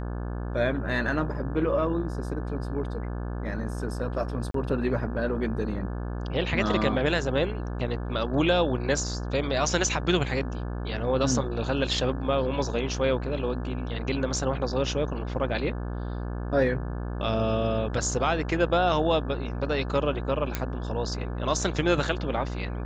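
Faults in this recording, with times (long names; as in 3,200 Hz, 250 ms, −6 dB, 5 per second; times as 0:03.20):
mains buzz 60 Hz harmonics 29 −32 dBFS
0:04.51–0:04.54: drop-out 33 ms
0:20.55: click −11 dBFS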